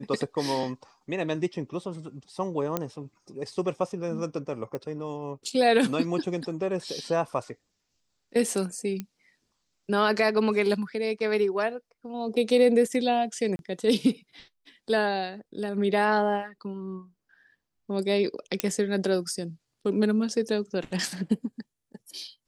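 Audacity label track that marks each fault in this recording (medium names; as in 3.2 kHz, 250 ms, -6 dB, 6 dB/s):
2.770000	2.770000	pop -12 dBFS
4.750000	4.750000	pop -21 dBFS
9.000000	9.000000	pop -19 dBFS
13.560000	13.590000	dropout 31 ms
18.600000	18.600000	pop -7 dBFS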